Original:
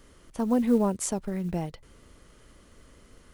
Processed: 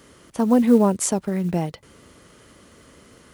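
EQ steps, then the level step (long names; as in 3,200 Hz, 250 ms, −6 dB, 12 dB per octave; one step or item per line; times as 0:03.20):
high-pass filter 100 Hz 12 dB per octave
+7.5 dB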